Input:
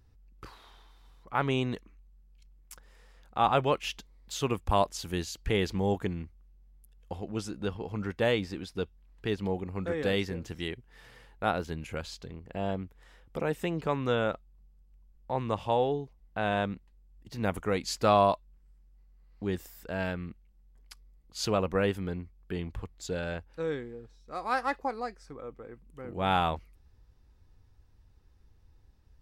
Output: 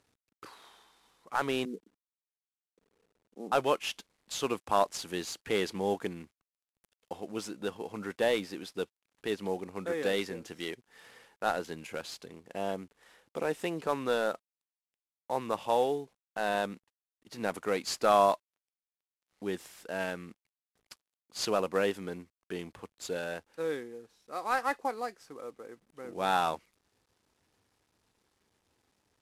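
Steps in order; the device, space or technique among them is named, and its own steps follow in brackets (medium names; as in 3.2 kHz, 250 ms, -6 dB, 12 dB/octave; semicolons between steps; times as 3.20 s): 1.65–3.52 s: elliptic band-pass 180–450 Hz, stop band 80 dB; early wireless headset (high-pass 260 Hz 12 dB/octave; CVSD coder 64 kbps)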